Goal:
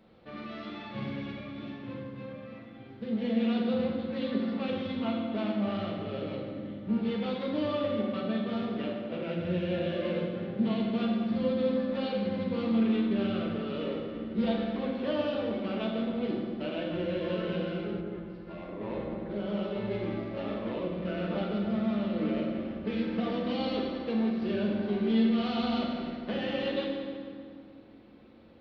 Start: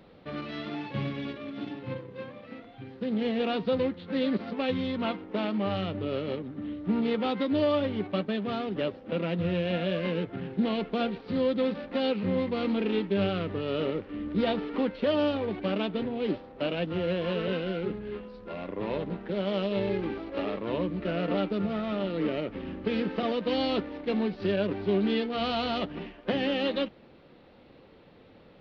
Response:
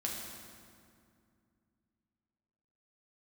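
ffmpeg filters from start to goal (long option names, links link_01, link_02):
-filter_complex "[1:a]atrim=start_sample=2205[link_01];[0:a][link_01]afir=irnorm=-1:irlink=0,asplit=3[link_02][link_03][link_04];[link_02]afade=type=out:start_time=18:duration=0.02[link_05];[link_03]adynamicequalizer=threshold=0.00355:dfrequency=2100:dqfactor=0.7:tfrequency=2100:tqfactor=0.7:attack=5:release=100:ratio=0.375:range=3:mode=cutabove:tftype=highshelf,afade=type=in:start_time=18:duration=0.02,afade=type=out:start_time=19.9:duration=0.02[link_06];[link_04]afade=type=in:start_time=19.9:duration=0.02[link_07];[link_05][link_06][link_07]amix=inputs=3:normalize=0,volume=-6dB"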